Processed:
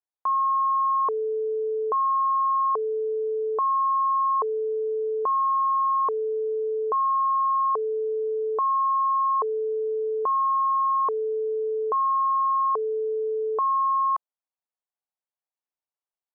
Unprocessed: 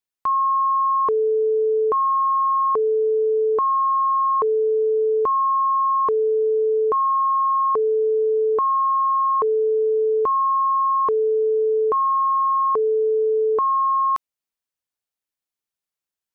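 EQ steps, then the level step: band-pass filter 790 Hz, Q 1.7; 0.0 dB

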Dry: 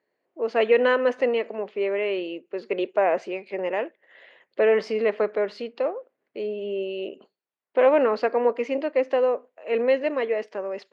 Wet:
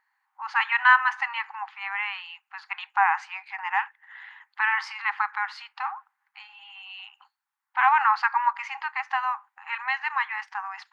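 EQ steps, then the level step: brick-wall FIR high-pass 770 Hz; resonant high shelf 2.1 kHz -6 dB, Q 1.5; +8.5 dB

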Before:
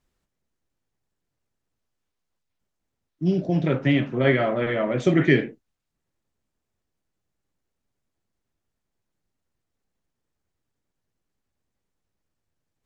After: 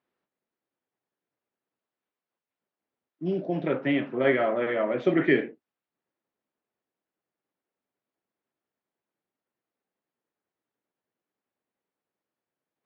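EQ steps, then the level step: high-pass 300 Hz 12 dB/octave; distance through air 320 m; 0.0 dB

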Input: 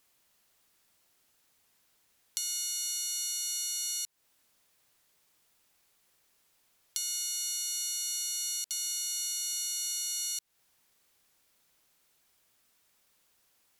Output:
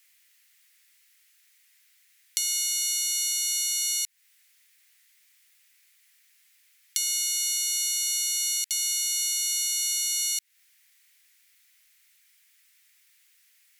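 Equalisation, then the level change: resonant high-pass 2 kHz, resonance Q 3.4; treble shelf 3.7 kHz +8 dB; 0.0 dB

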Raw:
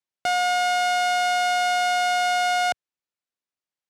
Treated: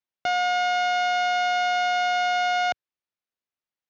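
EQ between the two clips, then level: elliptic low-pass 6.7 kHz, stop band 40 dB; distance through air 85 m; 0.0 dB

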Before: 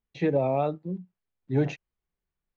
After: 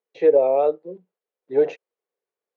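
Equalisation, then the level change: resonant high-pass 470 Hz, resonance Q 4.9; treble shelf 4.4 kHz -7 dB; 0.0 dB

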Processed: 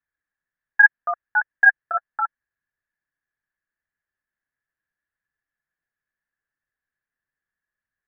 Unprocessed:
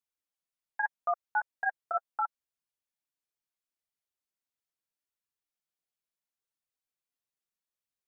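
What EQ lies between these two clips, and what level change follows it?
resonant low-pass 1.7 kHz, resonance Q 15; bass shelf 210 Hz +12 dB; 0.0 dB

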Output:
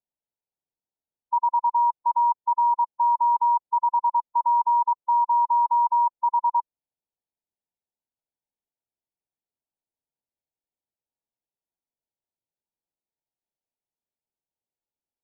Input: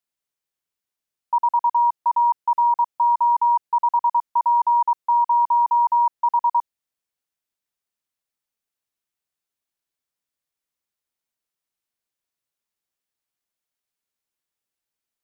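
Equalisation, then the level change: brick-wall FIR low-pass 1 kHz; -2.5 dB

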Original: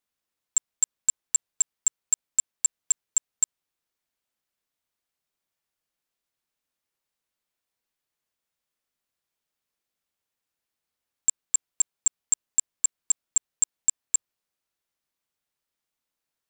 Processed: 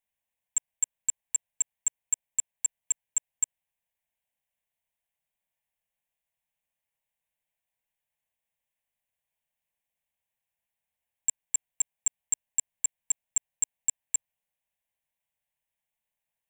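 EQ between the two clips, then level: static phaser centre 1.3 kHz, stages 6; 0.0 dB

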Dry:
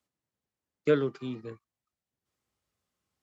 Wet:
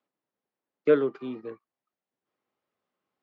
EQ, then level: band-pass 280–2300 Hz; peaking EQ 1.8 kHz -3 dB 1.5 oct; +5.0 dB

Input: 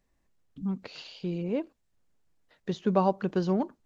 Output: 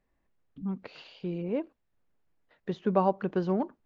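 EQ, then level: tone controls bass -3 dB, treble -15 dB; 0.0 dB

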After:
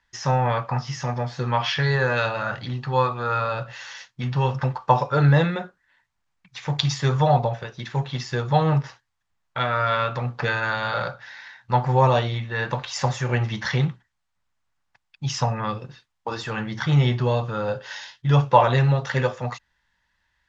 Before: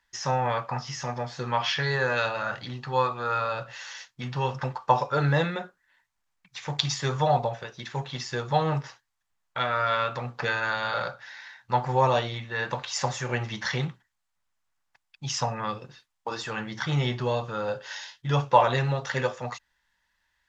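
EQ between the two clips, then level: distance through air 54 m; peaking EQ 94 Hz +6.5 dB 2.3 oct; +3.0 dB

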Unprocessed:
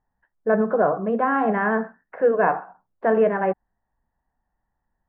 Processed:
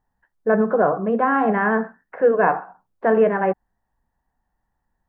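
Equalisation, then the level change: peaking EQ 630 Hz -2.5 dB 0.25 oct; +2.5 dB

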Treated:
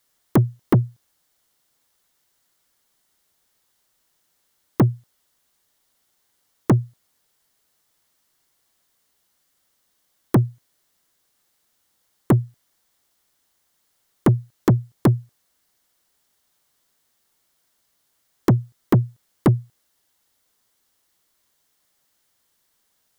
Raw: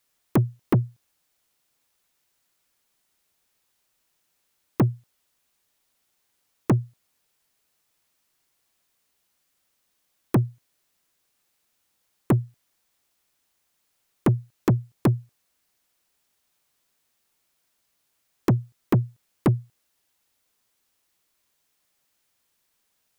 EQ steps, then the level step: peaking EQ 2.5 kHz -7.5 dB 0.21 oct; +4.0 dB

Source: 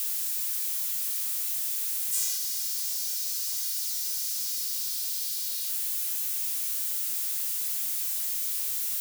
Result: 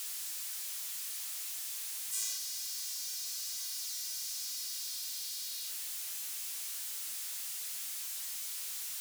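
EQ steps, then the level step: treble shelf 11 kHz -11.5 dB; -3.0 dB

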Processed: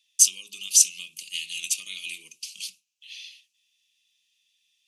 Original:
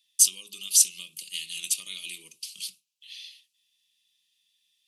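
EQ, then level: fifteen-band graphic EQ 250 Hz +4 dB, 2.5 kHz +10 dB, 6.3 kHz +9 dB; -4.5 dB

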